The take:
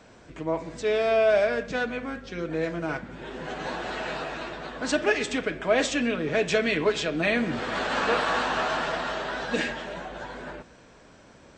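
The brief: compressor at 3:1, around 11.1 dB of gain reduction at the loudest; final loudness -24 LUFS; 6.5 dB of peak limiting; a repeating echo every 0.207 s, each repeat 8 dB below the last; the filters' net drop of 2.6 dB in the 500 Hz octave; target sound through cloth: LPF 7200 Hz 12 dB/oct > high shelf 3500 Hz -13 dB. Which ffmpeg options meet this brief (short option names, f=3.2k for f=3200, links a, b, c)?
-af "equalizer=f=500:t=o:g=-3,acompressor=threshold=-35dB:ratio=3,alimiter=level_in=4dB:limit=-24dB:level=0:latency=1,volume=-4dB,lowpass=7.2k,highshelf=f=3.5k:g=-13,aecho=1:1:207|414|621|828|1035:0.398|0.159|0.0637|0.0255|0.0102,volume=14.5dB"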